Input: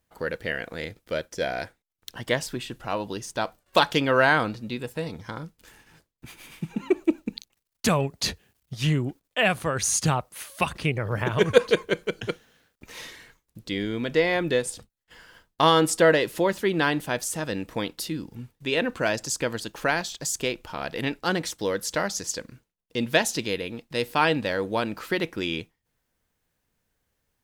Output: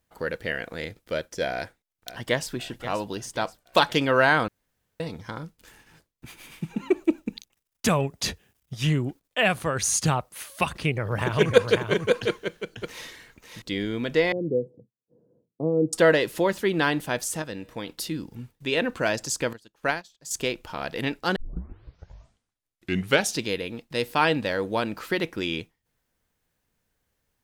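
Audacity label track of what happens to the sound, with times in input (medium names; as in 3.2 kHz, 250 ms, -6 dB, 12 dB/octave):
1.530000	2.510000	echo throw 530 ms, feedback 50%, level -13 dB
4.480000	5.000000	room tone
7.190000	8.900000	band-stop 4.3 kHz, Q 9.5
10.640000	13.620000	delay 544 ms -5.5 dB
14.320000	15.930000	elliptic band-pass 120–500 Hz, stop band 60 dB
17.420000	17.880000	feedback comb 120 Hz, decay 1.6 s, mix 50%
19.530000	20.310000	upward expansion 2.5:1, over -38 dBFS
21.360000	21.360000	tape start 2.05 s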